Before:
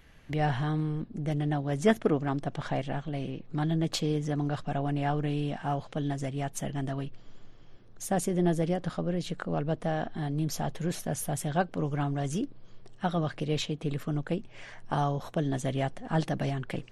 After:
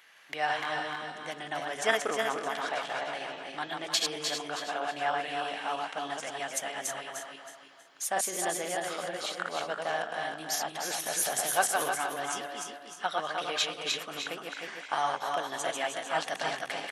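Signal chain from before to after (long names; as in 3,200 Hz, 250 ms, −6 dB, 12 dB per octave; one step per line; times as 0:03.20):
feedback delay that plays each chunk backwards 160 ms, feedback 56%, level −3 dB
high-pass filter 950 Hz 12 dB per octave
0:10.90–0:11.94: transient designer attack +3 dB, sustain +7 dB
single-tap delay 302 ms −8 dB
level +5 dB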